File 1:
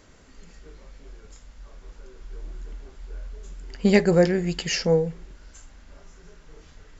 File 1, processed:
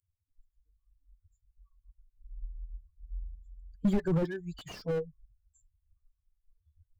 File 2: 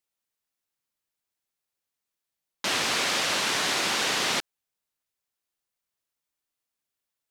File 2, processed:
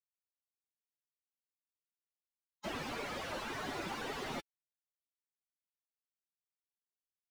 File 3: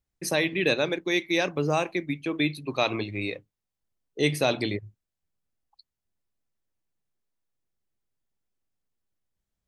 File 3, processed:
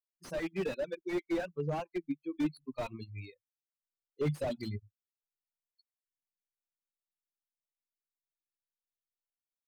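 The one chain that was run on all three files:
per-bin expansion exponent 3; slew limiter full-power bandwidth 17 Hz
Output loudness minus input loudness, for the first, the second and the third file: -12.0, -16.5, -10.0 LU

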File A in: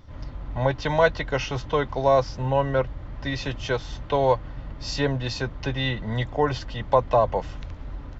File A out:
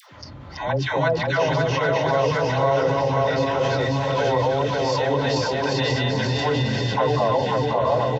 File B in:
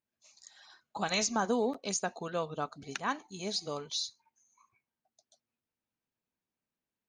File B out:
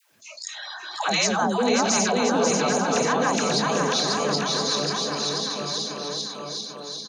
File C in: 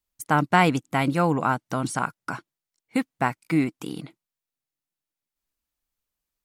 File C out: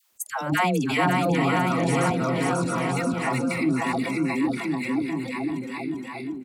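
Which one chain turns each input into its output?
regenerating reverse delay 0.396 s, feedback 48%, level -0.5 dB; HPF 78 Hz 24 dB/oct; spectral noise reduction 16 dB; dispersion lows, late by 0.128 s, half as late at 630 Hz; on a send: bouncing-ball echo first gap 0.54 s, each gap 0.9×, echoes 5; on the sum: fast leveller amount 50%; normalise peaks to -9 dBFS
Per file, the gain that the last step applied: -4.5, +4.5, -4.5 dB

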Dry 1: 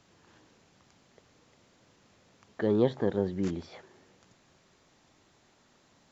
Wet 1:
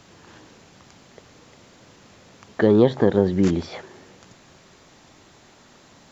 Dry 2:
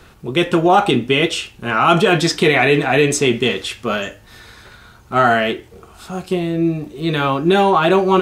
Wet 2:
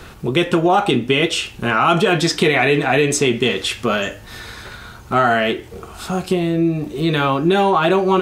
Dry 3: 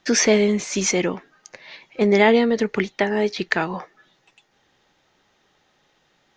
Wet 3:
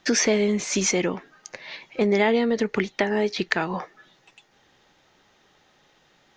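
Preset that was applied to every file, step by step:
compressor 2:1, threshold -26 dBFS; normalise peaks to -3 dBFS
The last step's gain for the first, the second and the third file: +13.0, +7.0, +3.0 dB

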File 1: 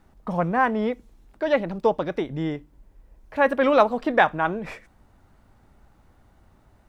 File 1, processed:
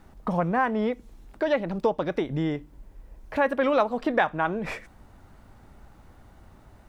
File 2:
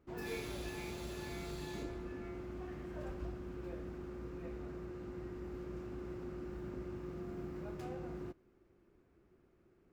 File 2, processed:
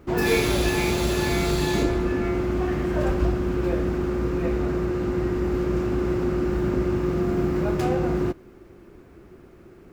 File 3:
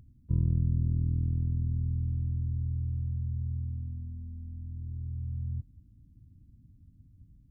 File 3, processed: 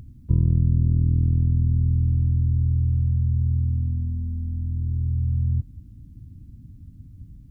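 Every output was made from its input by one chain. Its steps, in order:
compressor 2:1, threshold -32 dBFS; normalise peaks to -9 dBFS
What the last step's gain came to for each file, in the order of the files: +5.0, +21.0, +13.0 dB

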